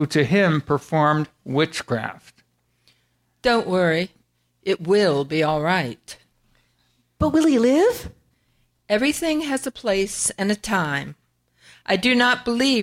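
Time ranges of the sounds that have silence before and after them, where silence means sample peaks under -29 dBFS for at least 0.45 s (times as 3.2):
3.44–4.06
4.67–6.13
7.21–8.08
8.9–11.1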